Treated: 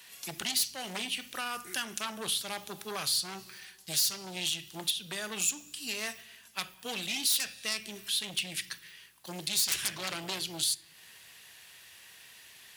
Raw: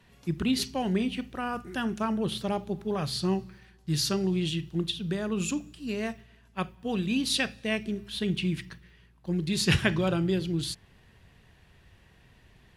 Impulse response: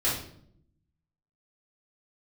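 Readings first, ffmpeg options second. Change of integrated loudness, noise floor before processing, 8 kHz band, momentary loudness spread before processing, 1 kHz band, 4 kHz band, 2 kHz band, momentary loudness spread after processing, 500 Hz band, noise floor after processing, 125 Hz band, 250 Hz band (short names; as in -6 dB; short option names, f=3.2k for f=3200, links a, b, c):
-2.5 dB, -59 dBFS, +7.5 dB, 10 LU, -5.0 dB, +2.0 dB, -2.5 dB, 23 LU, -12.5 dB, -56 dBFS, -19.0 dB, -17.5 dB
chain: -filter_complex "[0:a]aeval=exprs='0.376*sin(PI/2*5.62*val(0)/0.376)':c=same,aderivative,acrossover=split=150[a][b];[b]acompressor=threshold=-35dB:ratio=2[c];[a][c]amix=inputs=2:normalize=0,asplit=2[d][e];[1:a]atrim=start_sample=2205,asetrate=40131,aresample=44100[f];[e][f]afir=irnorm=-1:irlink=0,volume=-28.5dB[g];[d][g]amix=inputs=2:normalize=0"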